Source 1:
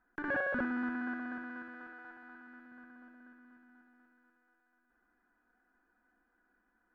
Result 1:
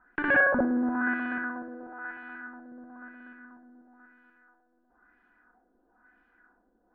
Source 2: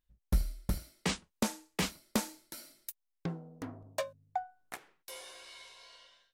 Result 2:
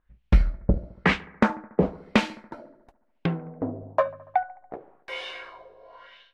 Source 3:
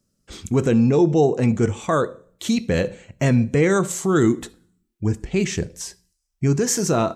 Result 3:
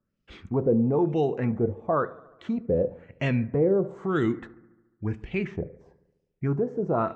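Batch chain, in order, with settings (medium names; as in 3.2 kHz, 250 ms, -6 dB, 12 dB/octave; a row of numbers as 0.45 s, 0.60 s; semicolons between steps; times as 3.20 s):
LFO low-pass sine 1 Hz 500–2900 Hz; bucket-brigade echo 71 ms, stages 1024, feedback 67%, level -21.5 dB; normalise loudness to -27 LUFS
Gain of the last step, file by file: +8.0 dB, +11.0 dB, -8.0 dB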